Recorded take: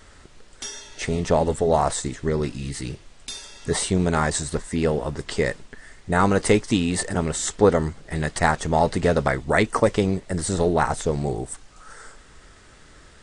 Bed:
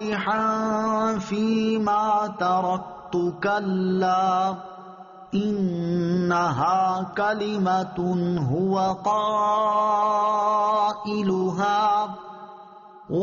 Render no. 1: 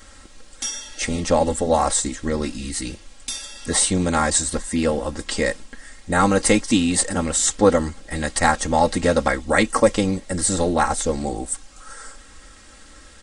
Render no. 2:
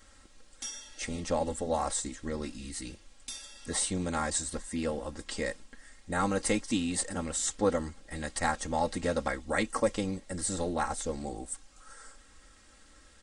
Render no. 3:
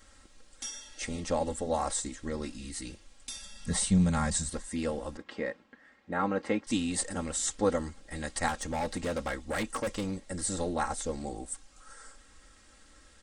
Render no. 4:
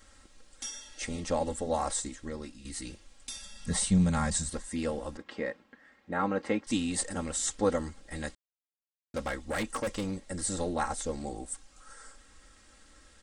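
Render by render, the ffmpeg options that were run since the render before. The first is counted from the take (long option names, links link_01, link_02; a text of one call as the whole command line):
ffmpeg -i in.wav -af "highshelf=frequency=5000:gain=8.5,aecho=1:1:3.7:0.74" out.wav
ffmpeg -i in.wav -af "volume=-12dB" out.wav
ffmpeg -i in.wav -filter_complex "[0:a]asettb=1/sr,asplit=3[link_01][link_02][link_03];[link_01]atrim=end=3.364[link_04];[link_02]atrim=start=3.36:end=4.5,asetpts=PTS-STARTPTS,afade=type=in:duration=0.004:curve=qsin,afade=type=out:start_time=1.136:duration=0.004:curve=qsin,lowshelf=frequency=240:width_type=q:width=3:gain=7[link_05];[link_03]atrim=start=4.496[link_06];[link_04][link_05]acrossfade=duration=0.004:curve1=hsin:curve2=qsin[link_07];[link_07][link_06]acrossfade=duration=0.004:curve1=qsin:curve2=hsin,asettb=1/sr,asplit=3[link_08][link_09][link_10];[link_08]atrim=end=5.174[link_11];[link_09]atrim=start=5.17:end=6.67,asetpts=PTS-STARTPTS,afade=type=in:duration=0.004:curve=qsin,afade=type=out:start_time=1.496:duration=0.004:curve=qsin,highpass=150,lowpass=2200[link_12];[link_10]atrim=start=6.666[link_13];[link_11][link_12]acrossfade=duration=0.004:curve1=hsin:curve2=qsin[link_14];[link_14][link_13]acrossfade=duration=0.004:curve1=qsin:curve2=hsin,asettb=1/sr,asplit=3[link_15][link_16][link_17];[link_15]atrim=end=8.484[link_18];[link_16]atrim=start=8.48:end=10.19,asetpts=PTS-STARTPTS,afade=type=in:duration=0.004:curve=qsin,afade=type=out:start_time=1.706:duration=0.004:curve=qsin,volume=28dB,asoftclip=hard,volume=-28dB[link_19];[link_17]atrim=start=10.186[link_20];[link_18][link_19]acrossfade=duration=0.004:curve1=hsin:curve2=qsin[link_21];[link_21][link_20]acrossfade=duration=0.004:curve1=qsin:curve2=hsin" out.wav
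ffmpeg -i in.wav -filter_complex "[0:a]asplit=4[link_01][link_02][link_03][link_04];[link_01]atrim=end=2.65,asetpts=PTS-STARTPTS,afade=type=out:start_time=1.98:duration=0.67:silence=0.354813[link_05];[link_02]atrim=start=2.65:end=8.35,asetpts=PTS-STARTPTS,afade=type=in:duration=0.004:curve=hsin:silence=0.354813,afade=type=out:start_time=5.696:duration=0.004:curve=hsin[link_06];[link_03]atrim=start=8.35:end=9.14,asetpts=PTS-STARTPTS,volume=0[link_07];[link_04]atrim=start=9.14,asetpts=PTS-STARTPTS,afade=type=in:duration=0.004:curve=hsin[link_08];[link_05][link_06][link_07][link_08]concat=n=4:v=0:a=1" out.wav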